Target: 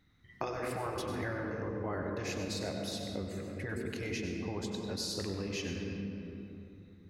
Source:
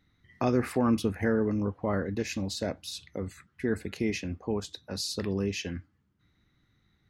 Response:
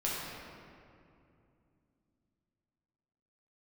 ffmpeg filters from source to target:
-filter_complex "[0:a]asplit=2[s0][s1];[1:a]atrim=start_sample=2205,adelay=96[s2];[s1][s2]afir=irnorm=-1:irlink=0,volume=0.335[s3];[s0][s3]amix=inputs=2:normalize=0,afftfilt=real='re*lt(hypot(re,im),0.251)':imag='im*lt(hypot(re,im),0.251)':win_size=1024:overlap=0.75,acompressor=threshold=0.0141:ratio=2"

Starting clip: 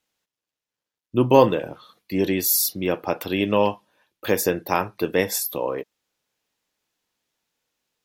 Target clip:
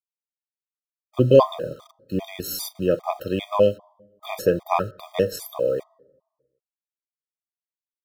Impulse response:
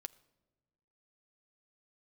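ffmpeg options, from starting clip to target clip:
-filter_complex "[0:a]equalizer=f=77:t=o:w=0.34:g=-4,aecho=1:1:1.7:0.43,asplit=2[s0][s1];[s1]adynamicsmooth=sensitivity=8:basefreq=930,volume=0.75[s2];[s0][s2]amix=inputs=2:normalize=0,acrusher=bits=6:mix=0:aa=0.000001,asplit=2[s3][s4];[s4]asuperstop=centerf=2400:order=4:qfactor=1.5[s5];[1:a]atrim=start_sample=2205,lowpass=3800[s6];[s5][s6]afir=irnorm=-1:irlink=0,volume=2[s7];[s3][s7]amix=inputs=2:normalize=0,afftfilt=real='re*gt(sin(2*PI*2.5*pts/sr)*(1-2*mod(floor(b*sr/1024/630),2)),0)':imag='im*gt(sin(2*PI*2.5*pts/sr)*(1-2*mod(floor(b*sr/1024/630),2)),0)':win_size=1024:overlap=0.75,volume=0.376"

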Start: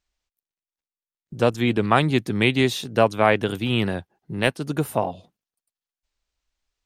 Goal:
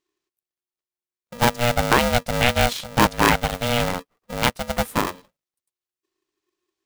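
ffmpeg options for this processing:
-filter_complex "[0:a]asplit=2[s0][s1];[s1]acrusher=bits=3:mix=0:aa=0.000001,volume=0.355[s2];[s0][s2]amix=inputs=2:normalize=0,aeval=exprs='val(0)*sgn(sin(2*PI*360*n/s))':c=same,volume=0.794"

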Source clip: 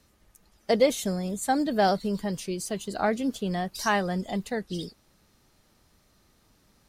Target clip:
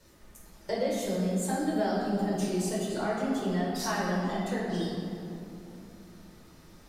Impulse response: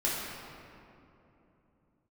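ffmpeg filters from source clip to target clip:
-filter_complex "[0:a]acompressor=threshold=0.01:ratio=3[s0];[1:a]atrim=start_sample=2205[s1];[s0][s1]afir=irnorm=-1:irlink=0"

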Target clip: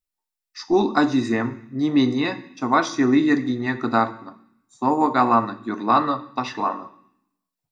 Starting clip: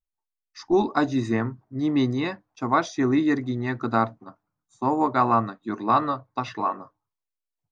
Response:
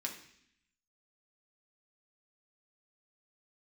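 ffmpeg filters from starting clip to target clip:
-filter_complex "[0:a]asplit=2[s0][s1];[1:a]atrim=start_sample=2205,highshelf=f=4800:g=9[s2];[s1][s2]afir=irnorm=-1:irlink=0,volume=0.668[s3];[s0][s3]amix=inputs=2:normalize=0"

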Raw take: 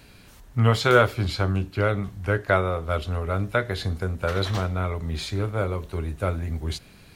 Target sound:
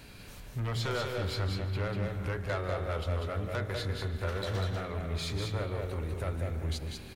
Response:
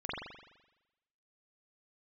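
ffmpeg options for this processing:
-filter_complex "[0:a]acompressor=threshold=0.02:ratio=2,asoftclip=type=tanh:threshold=0.0355,aecho=1:1:194:0.631,asplit=2[s0][s1];[1:a]atrim=start_sample=2205,adelay=150[s2];[s1][s2]afir=irnorm=-1:irlink=0,volume=0.251[s3];[s0][s3]amix=inputs=2:normalize=0"

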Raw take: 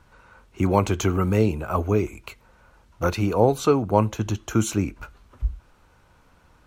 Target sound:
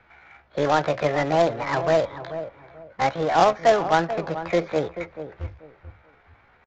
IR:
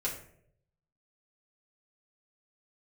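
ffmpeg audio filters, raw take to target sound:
-filter_complex "[0:a]acrossover=split=330 3400:gain=0.178 1 0.0794[s0][s1][s2];[s0][s1][s2]amix=inputs=3:normalize=0,acrossover=split=570|1800[s3][s4][s5];[s4]aeval=exprs='(tanh(44.7*val(0)+0.1)-tanh(0.1))/44.7':c=same[s6];[s5]acompressor=threshold=0.00282:ratio=16[s7];[s3][s6][s7]amix=inputs=3:normalize=0,acrusher=bits=2:mode=log:mix=0:aa=0.000001,asetrate=68011,aresample=44100,atempo=0.64842,aeval=exprs='0.335*(cos(1*acos(clip(val(0)/0.335,-1,1)))-cos(1*PI/2))+0.0119*(cos(5*acos(clip(val(0)/0.335,-1,1)))-cos(5*PI/2))':c=same,adynamicsmooth=sensitivity=4:basefreq=2200,asplit=2[s8][s9];[s9]adelay=436,lowpass=f=1200:p=1,volume=0.299,asplit=2[s10][s11];[s11]adelay=436,lowpass=f=1200:p=1,volume=0.26,asplit=2[s12][s13];[s13]adelay=436,lowpass=f=1200:p=1,volume=0.26[s14];[s10][s12][s14]amix=inputs=3:normalize=0[s15];[s8][s15]amix=inputs=2:normalize=0,aresample=16000,aresample=44100,volume=1.88"

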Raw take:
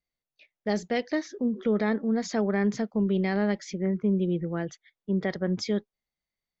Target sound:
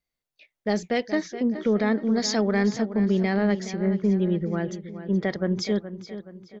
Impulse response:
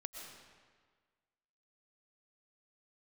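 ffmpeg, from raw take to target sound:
-filter_complex "[0:a]asettb=1/sr,asplit=3[s0][s1][s2];[s0]atrim=end=2.064[s3];[s1]atrim=start=2.06:end=2.7,asetpts=PTS-STARTPTS,afade=t=in:d=0.004:c=qsin,afade=t=out:st=0.636:d=0.004:c=qsin,equalizer=f=4800:w=1.1:g=11[s4];[s2]atrim=start=2.696[s5];[s3][s4]acrossfade=d=0.004:c1=hsin:c2=qsin[s6];[s6][s5]acrossfade=d=0.004:c1=qsin:c2=hsin,aeval=exprs='0.188*(cos(1*acos(clip(val(0)/0.188,-1,1)))-cos(1*PI/2))+0.00422*(cos(2*acos(clip(val(0)/0.188,-1,1)))-cos(2*PI/2))+0.0015*(cos(4*acos(clip(val(0)/0.188,-1,1)))-cos(4*PI/2))+0.00211*(cos(5*acos(clip(val(0)/0.188,-1,1)))-cos(5*PI/2))':c=same,asplit=2[s7][s8];[s8]adelay=422,lowpass=f=4200:p=1,volume=0.251,asplit=2[s9][s10];[s10]adelay=422,lowpass=f=4200:p=1,volume=0.46,asplit=2[s11][s12];[s12]adelay=422,lowpass=f=4200:p=1,volume=0.46,asplit=2[s13][s14];[s14]adelay=422,lowpass=f=4200:p=1,volume=0.46,asplit=2[s15][s16];[s16]adelay=422,lowpass=f=4200:p=1,volume=0.46[s17];[s9][s11][s13][s15][s17]amix=inputs=5:normalize=0[s18];[s7][s18]amix=inputs=2:normalize=0,volume=1.33"

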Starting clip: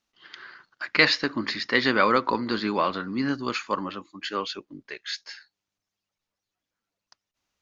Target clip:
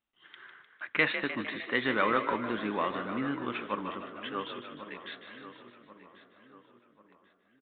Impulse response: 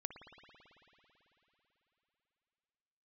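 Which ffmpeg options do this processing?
-filter_complex "[0:a]asplit=2[s0][s1];[s1]asplit=8[s2][s3][s4][s5][s6][s7][s8][s9];[s2]adelay=152,afreqshift=46,volume=0.335[s10];[s3]adelay=304,afreqshift=92,volume=0.204[s11];[s4]adelay=456,afreqshift=138,volume=0.124[s12];[s5]adelay=608,afreqshift=184,volume=0.0759[s13];[s6]adelay=760,afreqshift=230,volume=0.0462[s14];[s7]adelay=912,afreqshift=276,volume=0.0282[s15];[s8]adelay=1064,afreqshift=322,volume=0.0172[s16];[s9]adelay=1216,afreqshift=368,volume=0.0105[s17];[s10][s11][s12][s13][s14][s15][s16][s17]amix=inputs=8:normalize=0[s18];[s0][s18]amix=inputs=2:normalize=0,aresample=8000,aresample=44100,asplit=2[s19][s20];[s20]adelay=1090,lowpass=f=2300:p=1,volume=0.224,asplit=2[s21][s22];[s22]adelay=1090,lowpass=f=2300:p=1,volume=0.43,asplit=2[s23][s24];[s24]adelay=1090,lowpass=f=2300:p=1,volume=0.43,asplit=2[s25][s26];[s26]adelay=1090,lowpass=f=2300:p=1,volume=0.43[s27];[s21][s23][s25][s27]amix=inputs=4:normalize=0[s28];[s19][s28]amix=inputs=2:normalize=0,volume=0.447"

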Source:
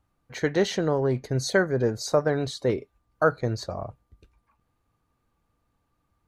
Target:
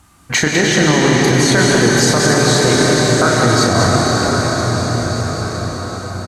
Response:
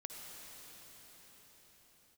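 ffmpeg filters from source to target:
-filter_complex "[0:a]highpass=71,acrossover=split=2700[s0][s1];[s1]acompressor=threshold=0.01:ratio=4:attack=1:release=60[s2];[s0][s2]amix=inputs=2:normalize=0,equalizer=f=125:t=o:w=1:g=-6,equalizer=f=500:t=o:w=1:g=-11,equalizer=f=8000:t=o:w=1:g=9,acompressor=threshold=0.0112:ratio=5,asplit=2[s3][s4];[s4]adelay=33,volume=0.473[s5];[s3][s5]amix=inputs=2:normalize=0,aecho=1:1:202:0.422[s6];[1:a]atrim=start_sample=2205,asetrate=26019,aresample=44100[s7];[s6][s7]afir=irnorm=-1:irlink=0,alimiter=level_in=31.6:limit=0.891:release=50:level=0:latency=1,volume=0.891" -ar 48000 -c:a libvorbis -b:a 192k

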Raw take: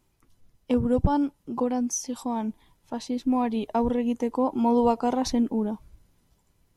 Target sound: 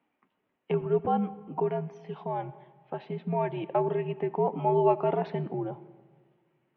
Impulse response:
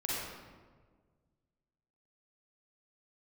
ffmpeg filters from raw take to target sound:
-filter_complex "[0:a]asplit=2[s0][s1];[1:a]atrim=start_sample=2205,adelay=28[s2];[s1][s2]afir=irnorm=-1:irlink=0,volume=0.0891[s3];[s0][s3]amix=inputs=2:normalize=0,highpass=f=320:t=q:w=0.5412,highpass=f=320:t=q:w=1.307,lowpass=f=2900:t=q:w=0.5176,lowpass=f=2900:t=q:w=0.7071,lowpass=f=2900:t=q:w=1.932,afreqshift=-83"

